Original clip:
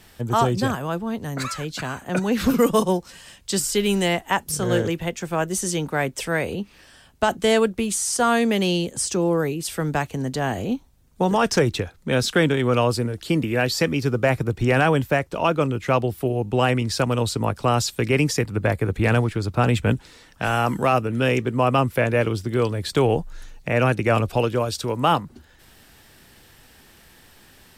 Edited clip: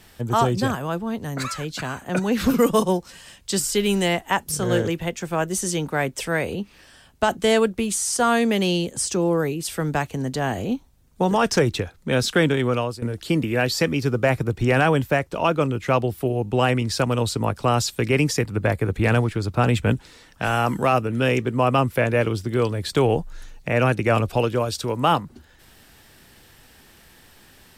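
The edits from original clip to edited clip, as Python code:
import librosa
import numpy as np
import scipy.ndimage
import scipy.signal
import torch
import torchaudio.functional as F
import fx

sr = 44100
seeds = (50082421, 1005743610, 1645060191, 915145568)

y = fx.edit(x, sr, fx.fade_out_to(start_s=12.61, length_s=0.41, floor_db=-16.0), tone=tone)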